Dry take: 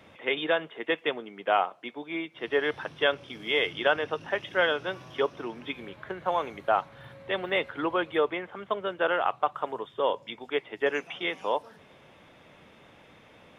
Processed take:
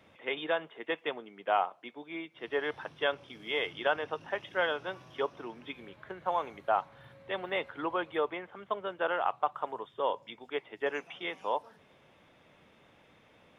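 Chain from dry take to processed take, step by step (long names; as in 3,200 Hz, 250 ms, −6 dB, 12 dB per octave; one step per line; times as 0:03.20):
dynamic equaliser 890 Hz, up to +5 dB, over −40 dBFS, Q 1.4
level −7 dB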